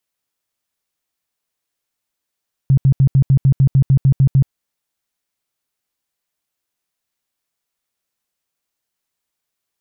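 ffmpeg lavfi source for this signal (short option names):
-f lavfi -i "aevalsrc='0.422*sin(2*PI*135*mod(t,0.15))*lt(mod(t,0.15),10/135)':d=1.8:s=44100"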